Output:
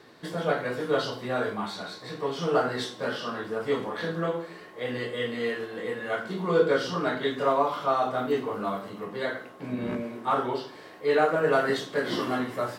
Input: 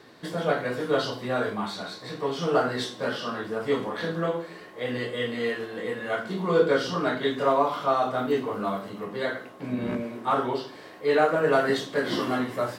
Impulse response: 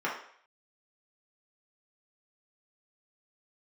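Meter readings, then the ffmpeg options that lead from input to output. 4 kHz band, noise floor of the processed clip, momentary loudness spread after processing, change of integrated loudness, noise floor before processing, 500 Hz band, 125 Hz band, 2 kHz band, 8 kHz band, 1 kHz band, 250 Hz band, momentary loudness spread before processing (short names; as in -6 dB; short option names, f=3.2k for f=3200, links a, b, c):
-1.5 dB, -47 dBFS, 11 LU, -1.5 dB, -46 dBFS, -1.5 dB, -1.5 dB, -1.0 dB, n/a, -1.0 dB, -2.0 dB, 11 LU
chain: -filter_complex "[0:a]asplit=2[a][b];[1:a]atrim=start_sample=2205[c];[b][c]afir=irnorm=-1:irlink=0,volume=-23.5dB[d];[a][d]amix=inputs=2:normalize=0,volume=-2dB"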